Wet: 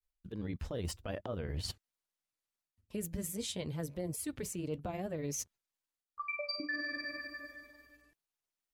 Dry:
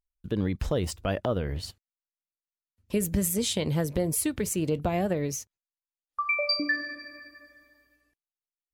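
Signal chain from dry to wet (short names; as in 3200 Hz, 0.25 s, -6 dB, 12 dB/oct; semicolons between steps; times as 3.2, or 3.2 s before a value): reverse; compressor 5:1, threshold -42 dBFS, peak gain reduction 19 dB; reverse; grains 0.1 s, grains 20/s, spray 11 ms, pitch spread up and down by 0 st; gain +5.5 dB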